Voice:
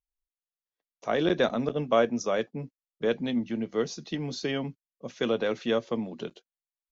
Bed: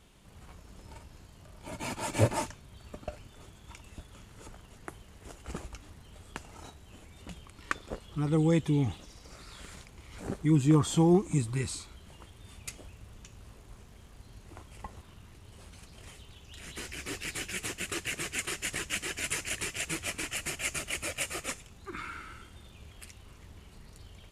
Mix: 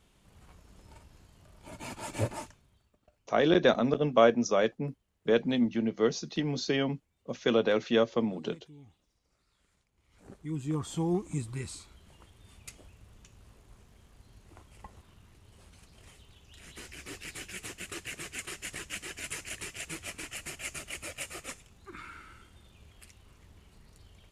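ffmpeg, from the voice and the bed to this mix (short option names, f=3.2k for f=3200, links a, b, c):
-filter_complex "[0:a]adelay=2250,volume=1.5dB[a];[1:a]volume=15dB,afade=t=out:st=2.13:d=0.78:silence=0.0944061,afade=t=in:st=9.91:d=1.39:silence=0.1[b];[a][b]amix=inputs=2:normalize=0"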